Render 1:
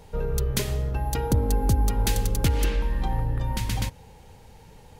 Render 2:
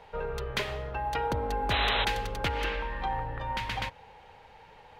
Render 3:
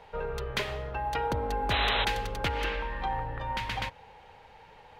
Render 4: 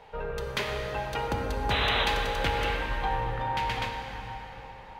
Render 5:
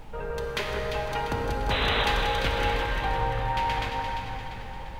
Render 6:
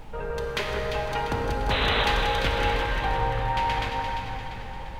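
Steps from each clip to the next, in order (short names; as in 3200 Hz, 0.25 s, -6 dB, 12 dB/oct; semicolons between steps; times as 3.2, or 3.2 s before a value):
three-band isolator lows -17 dB, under 550 Hz, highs -24 dB, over 3500 Hz; painted sound noise, 1.7–2.05, 370–4100 Hz -33 dBFS; gain +4.5 dB
nothing audible
plate-style reverb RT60 4.7 s, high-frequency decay 0.6×, DRR 1.5 dB
added noise brown -42 dBFS; on a send: echo with dull and thin repeats by turns 0.173 s, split 1900 Hz, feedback 70%, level -4 dB
Doppler distortion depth 0.1 ms; gain +1.5 dB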